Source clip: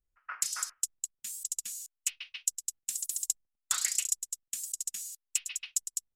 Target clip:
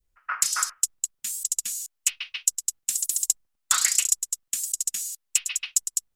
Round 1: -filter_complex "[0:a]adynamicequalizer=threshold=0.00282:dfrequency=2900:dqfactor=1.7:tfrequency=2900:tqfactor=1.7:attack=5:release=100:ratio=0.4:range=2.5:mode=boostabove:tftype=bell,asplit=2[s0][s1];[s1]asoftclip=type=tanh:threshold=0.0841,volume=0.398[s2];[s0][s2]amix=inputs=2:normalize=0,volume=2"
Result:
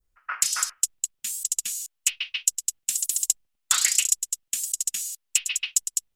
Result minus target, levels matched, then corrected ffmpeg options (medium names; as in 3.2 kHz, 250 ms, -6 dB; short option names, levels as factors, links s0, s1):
1 kHz band -3.5 dB
-filter_complex "[0:a]adynamicequalizer=threshold=0.00282:dfrequency=1200:dqfactor=1.7:tfrequency=1200:tqfactor=1.7:attack=5:release=100:ratio=0.4:range=2.5:mode=boostabove:tftype=bell,asplit=2[s0][s1];[s1]asoftclip=type=tanh:threshold=0.0841,volume=0.398[s2];[s0][s2]amix=inputs=2:normalize=0,volume=2"